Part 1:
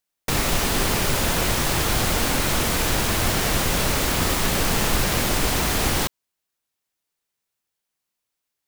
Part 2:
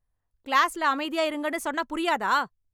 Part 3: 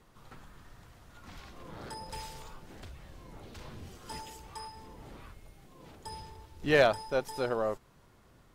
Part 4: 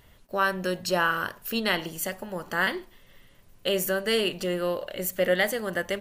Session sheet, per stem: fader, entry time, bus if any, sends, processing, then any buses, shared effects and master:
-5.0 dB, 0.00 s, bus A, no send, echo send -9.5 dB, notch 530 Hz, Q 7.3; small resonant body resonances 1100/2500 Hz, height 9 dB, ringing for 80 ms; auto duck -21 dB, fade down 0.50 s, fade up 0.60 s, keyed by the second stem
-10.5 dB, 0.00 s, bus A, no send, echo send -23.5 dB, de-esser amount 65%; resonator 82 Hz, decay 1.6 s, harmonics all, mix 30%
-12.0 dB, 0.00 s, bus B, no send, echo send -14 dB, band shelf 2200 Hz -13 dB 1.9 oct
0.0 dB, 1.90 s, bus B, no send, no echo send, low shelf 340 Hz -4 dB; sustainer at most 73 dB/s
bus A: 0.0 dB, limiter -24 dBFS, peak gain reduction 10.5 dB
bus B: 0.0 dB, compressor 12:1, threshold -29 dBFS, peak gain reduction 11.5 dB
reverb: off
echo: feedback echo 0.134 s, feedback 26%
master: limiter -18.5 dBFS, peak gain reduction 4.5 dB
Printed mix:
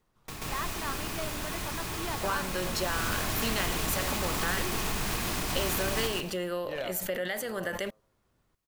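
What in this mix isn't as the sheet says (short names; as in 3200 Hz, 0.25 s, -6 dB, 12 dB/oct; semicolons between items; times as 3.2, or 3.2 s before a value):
stem 3: missing band shelf 2200 Hz -13 dB 1.9 oct; master: missing limiter -18.5 dBFS, peak gain reduction 4.5 dB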